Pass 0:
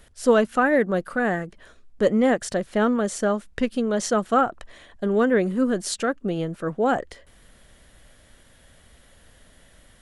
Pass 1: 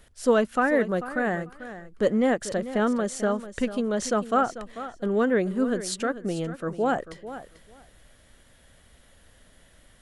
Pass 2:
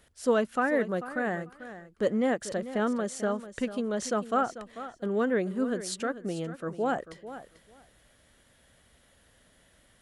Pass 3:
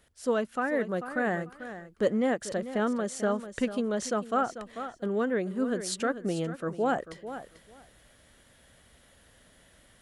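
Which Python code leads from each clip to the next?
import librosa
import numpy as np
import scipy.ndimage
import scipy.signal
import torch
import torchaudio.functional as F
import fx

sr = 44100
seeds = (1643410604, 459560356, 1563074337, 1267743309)

y1 = fx.echo_feedback(x, sr, ms=442, feedback_pct=16, wet_db=-13.5)
y1 = y1 * librosa.db_to_amplitude(-3.0)
y2 = fx.highpass(y1, sr, hz=73.0, slope=6)
y2 = y2 * librosa.db_to_amplitude(-4.0)
y3 = fx.rider(y2, sr, range_db=3, speed_s=0.5)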